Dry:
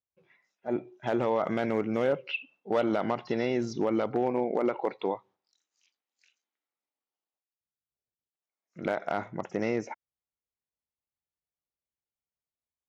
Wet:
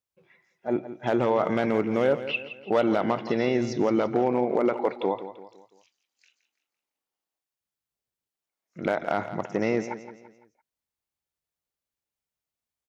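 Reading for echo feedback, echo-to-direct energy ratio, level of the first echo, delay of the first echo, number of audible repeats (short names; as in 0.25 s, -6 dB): 42%, -11.5 dB, -12.5 dB, 0.169 s, 3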